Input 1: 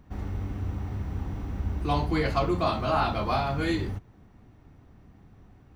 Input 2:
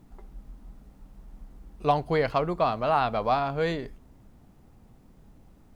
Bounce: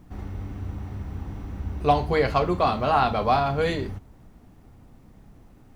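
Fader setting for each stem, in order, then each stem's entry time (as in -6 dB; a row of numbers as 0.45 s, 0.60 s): -1.5 dB, +2.0 dB; 0.00 s, 0.00 s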